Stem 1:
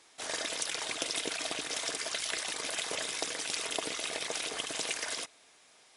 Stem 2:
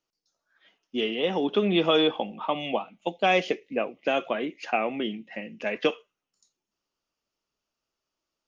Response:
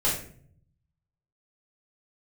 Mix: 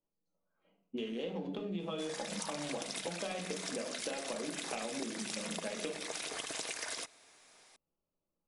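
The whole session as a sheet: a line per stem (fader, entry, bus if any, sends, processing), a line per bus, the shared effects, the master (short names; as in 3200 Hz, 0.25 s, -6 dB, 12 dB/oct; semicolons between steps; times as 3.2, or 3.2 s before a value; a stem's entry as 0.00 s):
-0.5 dB, 1.80 s, no send, bell 3100 Hz -3.5 dB 0.38 oct
-5.5 dB, 0.00 s, send -10.5 dB, Wiener smoothing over 25 samples; bell 190 Hz +10 dB 0.32 oct; compressor, threshold -26 dBFS, peak gain reduction 10 dB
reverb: on, RT60 0.55 s, pre-delay 4 ms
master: compressor, threshold -36 dBFS, peak gain reduction 12 dB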